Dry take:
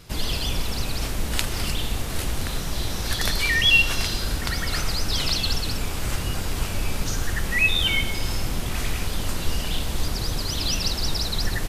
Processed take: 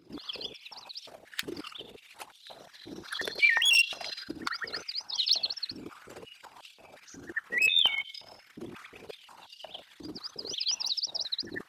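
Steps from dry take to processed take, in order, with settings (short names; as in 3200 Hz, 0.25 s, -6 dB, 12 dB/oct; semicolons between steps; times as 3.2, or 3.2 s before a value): formant sharpening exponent 2; wavefolder -14 dBFS; stepped high-pass 5.6 Hz 320–3500 Hz; gain -4 dB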